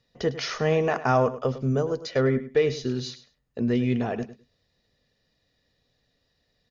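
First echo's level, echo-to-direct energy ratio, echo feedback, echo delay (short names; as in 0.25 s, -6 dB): -14.0 dB, -14.0 dB, 17%, 0.103 s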